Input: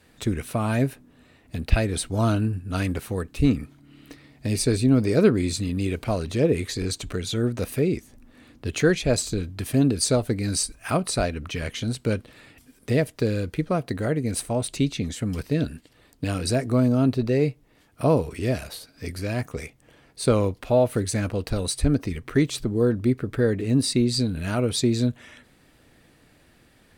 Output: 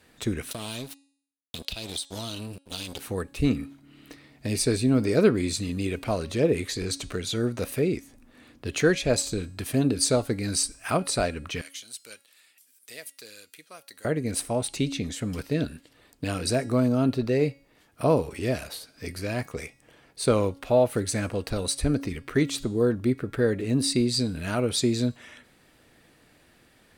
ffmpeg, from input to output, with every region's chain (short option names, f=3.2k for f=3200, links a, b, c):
-filter_complex "[0:a]asettb=1/sr,asplit=3[a][b][c];[a]atrim=end=0.514[d];[b]atrim=start=0.51:end=3,asetpts=PTS-STARTPTS,afade=t=in:d=0.004:c=qsin,afade=t=out:st=2.486:d=0.004:c=qsin,highshelf=f=2.5k:t=q:w=3:g=11.5,aeval=exprs='sgn(val(0))*max(abs(val(0))-0.0316,0)':c=same,acompressor=threshold=-28dB:ratio=10:attack=3.2:release=140:knee=1:detection=peak[e];[c]atrim=start=2.996[f];[d][e]acrossfade=d=0.004:c1=hsin:c2=qsin[g];[g][f]acrossfade=d=0.004:c1=qsin:c2=hsin,asettb=1/sr,asplit=3[h][i][j];[h]atrim=end=11.614[k];[i]atrim=start=11.61:end=14.05,asetpts=PTS-STARTPTS,afade=t=in:d=0.004:c=qsin,afade=t=out:st=2.436:d=0.004:c=qsin,deesser=0.3,aderivative[l];[j]atrim=start=14.046[m];[k][l]acrossfade=d=0.004:c1=hsin:c2=qsin[n];[n][m]acrossfade=d=0.004:c1=qsin:c2=hsin,lowshelf=f=210:g=-6,bandreject=f=277.3:t=h:w=4,bandreject=f=554.6:t=h:w=4,bandreject=f=831.9:t=h:w=4,bandreject=f=1.1092k:t=h:w=4,bandreject=f=1.3865k:t=h:w=4,bandreject=f=1.6638k:t=h:w=4,bandreject=f=1.9411k:t=h:w=4,bandreject=f=2.2184k:t=h:w=4,bandreject=f=2.4957k:t=h:w=4,bandreject=f=2.773k:t=h:w=4,bandreject=f=3.0503k:t=h:w=4,bandreject=f=3.3276k:t=h:w=4,bandreject=f=3.6049k:t=h:w=4,bandreject=f=3.8822k:t=h:w=4,bandreject=f=4.1595k:t=h:w=4,bandreject=f=4.4368k:t=h:w=4,bandreject=f=4.7141k:t=h:w=4,bandreject=f=4.9914k:t=h:w=4,bandreject=f=5.2687k:t=h:w=4,bandreject=f=5.546k:t=h:w=4,bandreject=f=5.8233k:t=h:w=4,bandreject=f=6.1006k:t=h:w=4,bandreject=f=6.3779k:t=h:w=4,bandreject=f=6.6552k:t=h:w=4,bandreject=f=6.9325k:t=h:w=4,bandreject=f=7.2098k:t=h:w=4,bandreject=f=7.4871k:t=h:w=4,bandreject=f=7.7644k:t=h:w=4,bandreject=f=8.0417k:t=h:w=4,bandreject=f=8.319k:t=h:w=4,bandreject=f=8.5963k:t=h:w=4,bandreject=f=8.8736k:t=h:w=4,bandreject=f=9.1509k:t=h:w=4,bandreject=f=9.4282k:t=h:w=4,bandreject=f=9.7055k:t=h:w=4,bandreject=f=9.9828k:t=h:w=4,bandreject=f=10.2601k:t=h:w=4,bandreject=f=10.5374k:t=h:w=4"